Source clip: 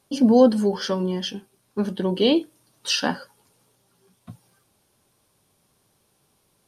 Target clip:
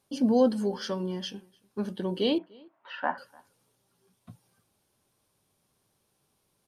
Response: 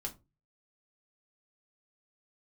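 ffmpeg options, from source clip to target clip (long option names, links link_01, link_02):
-filter_complex "[0:a]asettb=1/sr,asplit=3[link_01][link_02][link_03];[link_01]atrim=end=2.384[link_04];[link_02]atrim=start=2.38:end=3.18,asetpts=PTS-STARTPTS,afade=type=in:duration=0.004:curve=qsin,afade=type=out:start_time=0.796:duration=0.004:curve=qsin,highpass=370,equalizer=frequency=450:width_type=q:width=4:gain=-9,equalizer=frequency=660:width_type=q:width=4:gain=9,equalizer=frequency=980:width_type=q:width=4:gain=8,equalizer=frequency=1400:width_type=q:width=4:gain=3,equalizer=frequency=2000:width_type=q:width=4:gain=4,lowpass=frequency=2100:width=0.5412,lowpass=frequency=2100:width=1.3066[link_05];[link_03]atrim=start=3.176[link_06];[link_04][link_05]acrossfade=duration=0.004:curve1=hsin:curve2=qsin[link_07];[link_07][link_06]acrossfade=duration=0.004:curve1=qsin:curve2=hsin,asplit=2[link_08][link_09];[link_09]adelay=297.4,volume=-26dB,highshelf=frequency=4000:gain=-6.69[link_10];[link_08][link_10]amix=inputs=2:normalize=0,volume=-7.5dB"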